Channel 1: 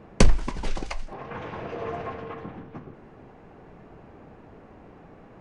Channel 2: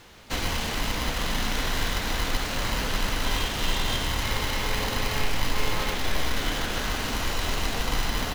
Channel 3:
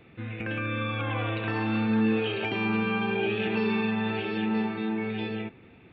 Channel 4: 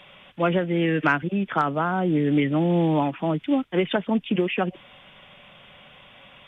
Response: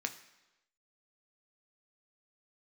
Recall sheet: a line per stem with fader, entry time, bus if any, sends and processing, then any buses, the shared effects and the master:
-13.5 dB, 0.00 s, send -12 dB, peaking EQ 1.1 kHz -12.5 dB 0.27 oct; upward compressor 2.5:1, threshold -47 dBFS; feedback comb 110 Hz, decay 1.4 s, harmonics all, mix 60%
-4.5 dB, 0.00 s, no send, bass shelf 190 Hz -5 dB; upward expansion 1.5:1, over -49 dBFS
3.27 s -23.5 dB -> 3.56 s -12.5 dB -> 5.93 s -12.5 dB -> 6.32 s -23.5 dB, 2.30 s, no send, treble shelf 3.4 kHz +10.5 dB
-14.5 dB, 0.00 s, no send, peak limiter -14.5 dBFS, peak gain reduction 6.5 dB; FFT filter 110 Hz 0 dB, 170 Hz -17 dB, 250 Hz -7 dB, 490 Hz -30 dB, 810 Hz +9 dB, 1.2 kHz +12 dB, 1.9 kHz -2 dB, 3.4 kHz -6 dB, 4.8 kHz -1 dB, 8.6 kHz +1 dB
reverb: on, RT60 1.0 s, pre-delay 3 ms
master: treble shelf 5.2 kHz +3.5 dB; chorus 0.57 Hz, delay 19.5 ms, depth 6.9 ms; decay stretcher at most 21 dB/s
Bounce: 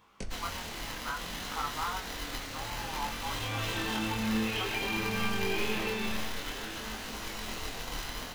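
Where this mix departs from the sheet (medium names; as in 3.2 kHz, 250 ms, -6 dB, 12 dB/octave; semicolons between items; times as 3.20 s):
stem 3 -23.5 dB -> -15.0 dB; master: missing decay stretcher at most 21 dB/s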